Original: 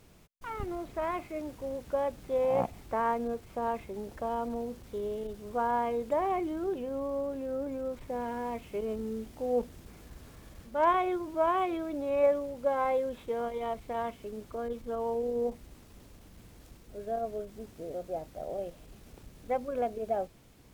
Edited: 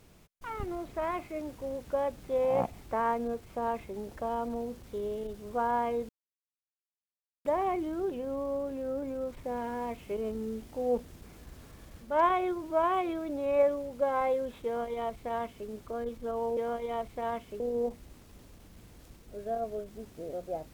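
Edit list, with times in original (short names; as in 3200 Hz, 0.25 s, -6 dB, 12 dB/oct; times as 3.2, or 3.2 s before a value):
6.09 insert silence 1.36 s
13.29–14.32 copy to 15.21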